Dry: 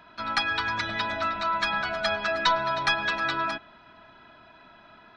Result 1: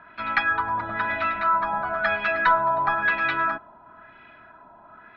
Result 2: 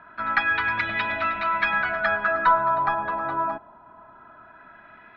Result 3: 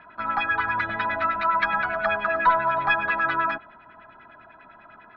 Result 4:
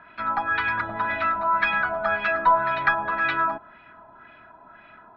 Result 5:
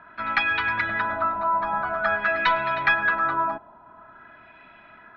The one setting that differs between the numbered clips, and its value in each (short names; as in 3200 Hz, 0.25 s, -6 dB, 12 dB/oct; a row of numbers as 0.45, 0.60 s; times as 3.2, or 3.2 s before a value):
LFO low-pass, rate: 1, 0.22, 10, 1.9, 0.48 Hz